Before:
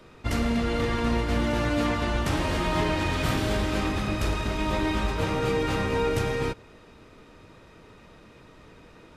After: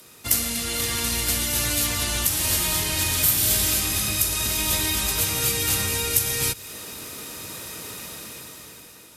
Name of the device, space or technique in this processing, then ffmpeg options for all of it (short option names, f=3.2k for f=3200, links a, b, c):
FM broadcast chain: -filter_complex "[0:a]highpass=75,dynaudnorm=f=330:g=7:m=14dB,acrossover=split=110|1800[a][b][c];[a]acompressor=threshold=-24dB:ratio=4[d];[b]acompressor=threshold=-30dB:ratio=4[e];[c]acompressor=threshold=-33dB:ratio=4[f];[d][e][f]amix=inputs=3:normalize=0,aemphasis=mode=production:type=75fm,alimiter=limit=-14.5dB:level=0:latency=1:release=327,asoftclip=type=hard:threshold=-15.5dB,lowpass=f=15k:w=0.5412,lowpass=f=15k:w=1.3066,aemphasis=mode=production:type=75fm,volume=-2.5dB"